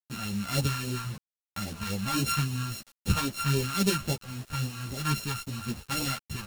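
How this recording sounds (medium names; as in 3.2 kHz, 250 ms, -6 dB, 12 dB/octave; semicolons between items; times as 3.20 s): a buzz of ramps at a fixed pitch in blocks of 32 samples; phasing stages 2, 3.7 Hz, lowest notch 380–1300 Hz; a quantiser's noise floor 8-bit, dither none; a shimmering, thickened sound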